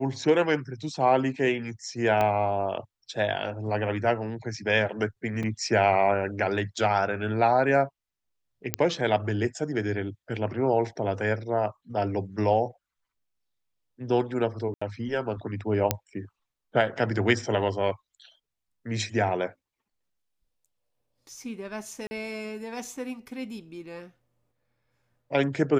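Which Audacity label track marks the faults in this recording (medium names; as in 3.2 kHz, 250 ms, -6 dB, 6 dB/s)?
2.210000	2.210000	pop -13 dBFS
5.430000	5.440000	dropout 5.2 ms
8.740000	8.740000	pop -6 dBFS
14.740000	14.810000	dropout 75 ms
15.910000	15.910000	pop -5 dBFS
22.070000	22.110000	dropout 40 ms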